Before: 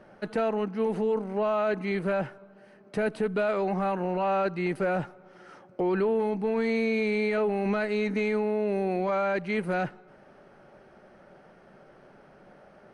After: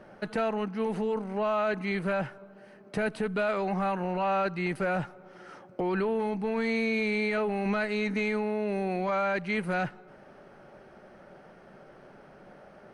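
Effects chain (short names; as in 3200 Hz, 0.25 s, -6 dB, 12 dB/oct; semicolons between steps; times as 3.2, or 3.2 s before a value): dynamic EQ 390 Hz, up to -6 dB, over -38 dBFS, Q 0.71; gain +2 dB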